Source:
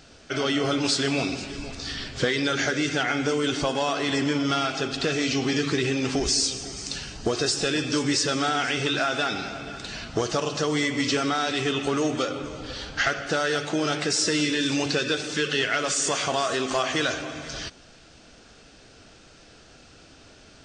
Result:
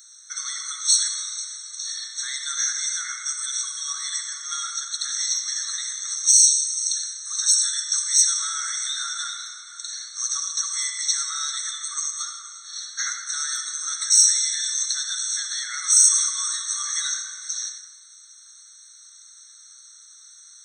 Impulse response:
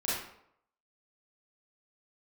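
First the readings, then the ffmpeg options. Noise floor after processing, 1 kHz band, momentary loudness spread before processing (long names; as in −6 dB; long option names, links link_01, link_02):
−48 dBFS, −10.0 dB, 10 LU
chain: -filter_complex "[0:a]aexciter=amount=14.8:drive=5.1:freq=4400,asplit=2[link_01][link_02];[1:a]atrim=start_sample=2205,asetrate=22491,aresample=44100[link_03];[link_02][link_03]afir=irnorm=-1:irlink=0,volume=-14.5dB[link_04];[link_01][link_04]amix=inputs=2:normalize=0,afftfilt=real='re*eq(mod(floor(b*sr/1024/1100),2),1)':imag='im*eq(mod(floor(b*sr/1024/1100),2),1)':win_size=1024:overlap=0.75,volume=-10.5dB"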